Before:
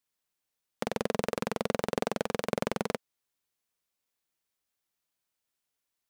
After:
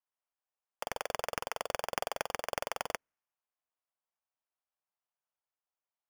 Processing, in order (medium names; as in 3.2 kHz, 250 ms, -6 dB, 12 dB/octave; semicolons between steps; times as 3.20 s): high-pass 640 Hz 24 dB/octave; level-controlled noise filter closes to 1.1 kHz, open at -33.5 dBFS; sample-rate reducer 4 kHz, jitter 0%